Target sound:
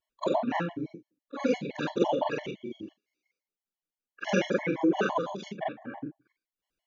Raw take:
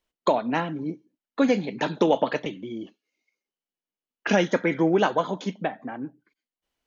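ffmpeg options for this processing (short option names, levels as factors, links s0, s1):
-af "afftfilt=real='re':imag='-im':win_size=4096:overlap=0.75,afftfilt=real='re*gt(sin(2*PI*5.9*pts/sr)*(1-2*mod(floor(b*sr/1024/570),2)),0)':imag='im*gt(sin(2*PI*5.9*pts/sr)*(1-2*mod(floor(b*sr/1024/570),2)),0)':win_size=1024:overlap=0.75,volume=1.33"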